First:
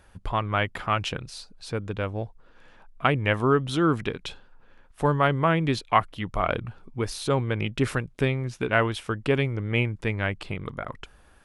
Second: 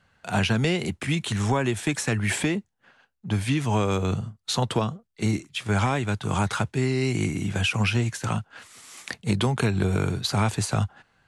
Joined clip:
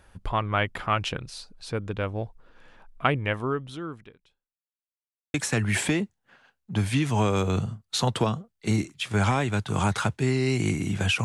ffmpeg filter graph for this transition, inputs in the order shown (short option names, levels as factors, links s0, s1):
-filter_complex "[0:a]apad=whole_dur=11.24,atrim=end=11.24,asplit=2[s0][s1];[s0]atrim=end=4.58,asetpts=PTS-STARTPTS,afade=t=out:st=2.99:d=1.59:c=qua[s2];[s1]atrim=start=4.58:end=5.34,asetpts=PTS-STARTPTS,volume=0[s3];[1:a]atrim=start=1.89:end=7.79,asetpts=PTS-STARTPTS,afade=t=in:d=0.004:c=hsin[s4];[s2][s3][s4]concat=n=3:v=0:a=1"